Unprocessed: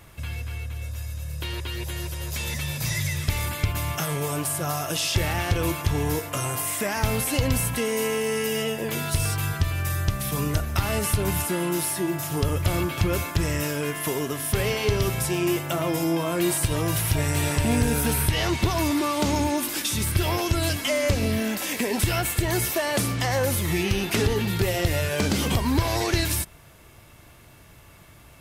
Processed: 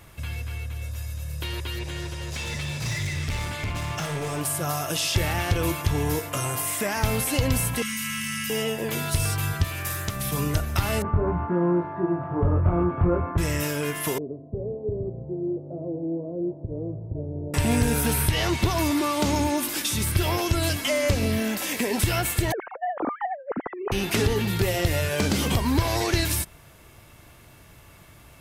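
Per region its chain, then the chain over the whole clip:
0:01.79–0:04.41: low-pass filter 6,900 Hz + gain into a clipping stage and back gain 25 dB + flutter between parallel walls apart 10.3 metres, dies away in 0.4 s
0:07.82–0:08.50: Chebyshev band-stop filter 210–1,200 Hz, order 4 + envelope flattener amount 100%
0:09.64–0:10.16: high-pass filter 200 Hz 6 dB per octave + high-shelf EQ 7,500 Hz +6 dB + highs frequency-modulated by the lows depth 0.27 ms
0:11.02–0:13.38: low-pass filter 1,300 Hz 24 dB per octave + double-tracking delay 23 ms −2.5 dB + highs frequency-modulated by the lows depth 0.17 ms
0:14.18–0:17.54: Butterworth low-pass 560 Hz + spectral tilt +2.5 dB per octave
0:22.52–0:23.92: three sine waves on the formant tracks + low-pass filter 1,300 Hz 24 dB per octave + compressor whose output falls as the input rises −29 dBFS, ratio −0.5
whole clip: no processing

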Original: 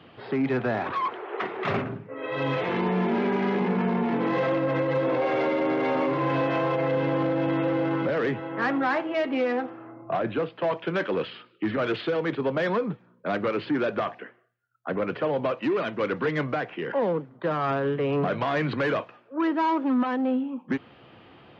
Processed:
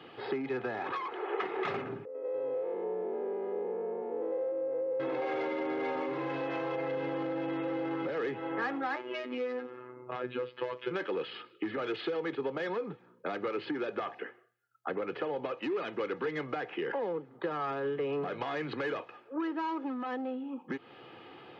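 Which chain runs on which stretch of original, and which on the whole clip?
0:02.05–0:05.00: spectrum averaged block by block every 100 ms + resonant band-pass 510 Hz, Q 4.7
0:08.96–0:10.91: phases set to zero 125 Hz + parametric band 730 Hz −12.5 dB 0.28 octaves
whole clip: downward compressor, threshold −32 dBFS; high-pass filter 170 Hz 12 dB per octave; comb filter 2.4 ms, depth 44%

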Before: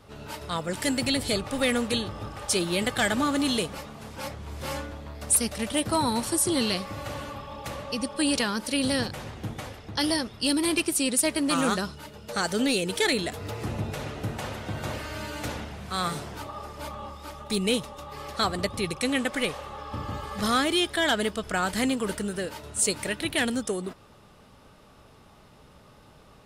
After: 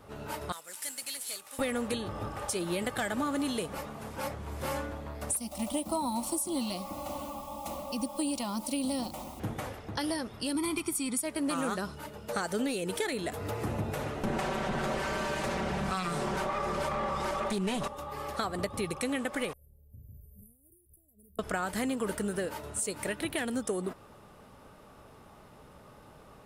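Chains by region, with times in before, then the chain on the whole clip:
0:00.52–0:01.59: variable-slope delta modulation 64 kbit/s + first difference
0:05.37–0:09.40: bit-depth reduction 8 bits, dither none + phaser with its sweep stopped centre 440 Hz, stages 6
0:10.55–0:11.23: comb filter 0.9 ms, depth 77% + upward compression, threshold −25 dBFS
0:14.23–0:17.88: lower of the sound and its delayed copy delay 5.2 ms + low-pass filter 8,100 Hz + envelope flattener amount 70%
0:19.53–0:21.39: guitar amp tone stack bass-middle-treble 10-0-10 + downward compressor 10 to 1, threshold −39 dBFS + inverse Chebyshev band-stop filter 980–5,500 Hz, stop band 60 dB
whole clip: low-shelf EQ 270 Hz −5.5 dB; downward compressor, threshold −30 dBFS; parametric band 4,200 Hz −8.5 dB 2.1 octaves; level +3 dB

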